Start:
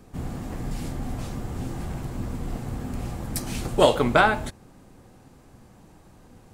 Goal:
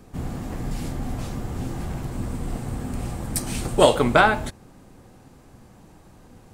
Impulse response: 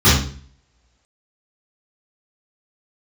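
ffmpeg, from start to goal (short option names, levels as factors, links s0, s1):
-filter_complex "[0:a]asettb=1/sr,asplit=3[s0][s1][s2];[s0]atrim=end=2.124[s3];[s1]atrim=start=2.12:end=4.16,asetpts=PTS-STARTPTS,afade=t=in:d=0.004:c=qsin,afade=t=out:st=2.036:d=0.004:c=qsin,equalizer=f=8600:w=4.5:g=7[s4];[s2]atrim=start=4.156[s5];[s3][s4]acrossfade=d=0.004:c1=hsin:c2=qsin[s6];[s6][s5]acrossfade=d=0.004:c1=qsin:c2=hsin,volume=1.26"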